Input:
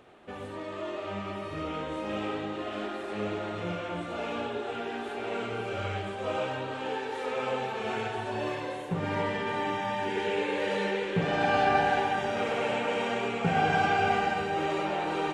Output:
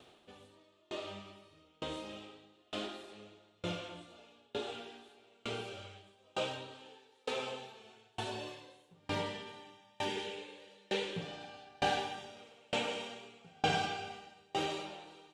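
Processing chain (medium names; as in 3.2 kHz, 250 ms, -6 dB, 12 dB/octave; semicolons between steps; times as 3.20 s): resonant high shelf 2.6 kHz +9 dB, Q 1.5; sawtooth tremolo in dB decaying 1.1 Hz, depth 35 dB; trim -2.5 dB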